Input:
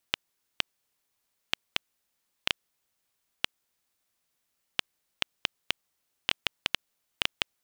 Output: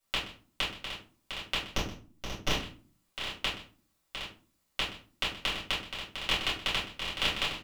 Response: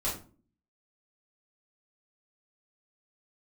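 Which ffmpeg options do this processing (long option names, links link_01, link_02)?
-filter_complex "[0:a]aecho=1:1:125|704|764:0.15|0.376|0.355,asplit=3[link_01][link_02][link_03];[link_01]afade=type=out:start_time=1.68:duration=0.02[link_04];[link_02]aeval=exprs='max(val(0),0)':channel_layout=same,afade=type=in:start_time=1.68:duration=0.02,afade=type=out:start_time=2.5:duration=0.02[link_05];[link_03]afade=type=in:start_time=2.5:duration=0.02[link_06];[link_04][link_05][link_06]amix=inputs=3:normalize=0[link_07];[1:a]atrim=start_sample=2205[link_08];[link_07][link_08]afir=irnorm=-1:irlink=0,volume=-3dB"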